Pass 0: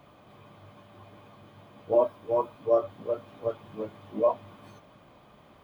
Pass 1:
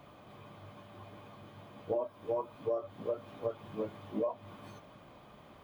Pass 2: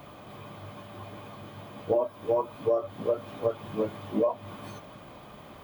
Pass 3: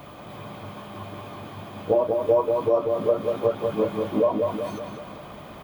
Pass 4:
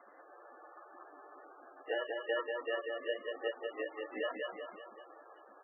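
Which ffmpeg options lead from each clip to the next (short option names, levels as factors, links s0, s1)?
-af "acompressor=threshold=0.0316:ratio=12"
-af "highshelf=f=9700:g=7.5,volume=2.51"
-filter_complex "[0:a]asplit=2[s0][s1];[s1]adelay=190,lowpass=f=4200:p=1,volume=0.631,asplit=2[s2][s3];[s3]adelay=190,lowpass=f=4200:p=1,volume=0.53,asplit=2[s4][s5];[s5]adelay=190,lowpass=f=4200:p=1,volume=0.53,asplit=2[s6][s7];[s7]adelay=190,lowpass=f=4200:p=1,volume=0.53,asplit=2[s8][s9];[s9]adelay=190,lowpass=f=4200:p=1,volume=0.53,asplit=2[s10][s11];[s11]adelay=190,lowpass=f=4200:p=1,volume=0.53,asplit=2[s12][s13];[s13]adelay=190,lowpass=f=4200:p=1,volume=0.53[s14];[s0][s2][s4][s6][s8][s10][s12][s14]amix=inputs=8:normalize=0,volume=1.68"
-af "acrusher=samples=19:mix=1:aa=0.000001,highpass=f=410:w=0.5412,highpass=f=410:w=1.3066,equalizer=f=420:t=q:w=4:g=-5,equalizer=f=620:t=q:w=4:g=-8,equalizer=f=1000:t=q:w=4:g=-8,equalizer=f=1600:t=q:w=4:g=-5,equalizer=f=2400:t=q:w=4:g=-4,lowpass=f=2700:w=0.5412,lowpass=f=2700:w=1.3066,volume=0.398" -ar 24000 -c:a libmp3lame -b:a 8k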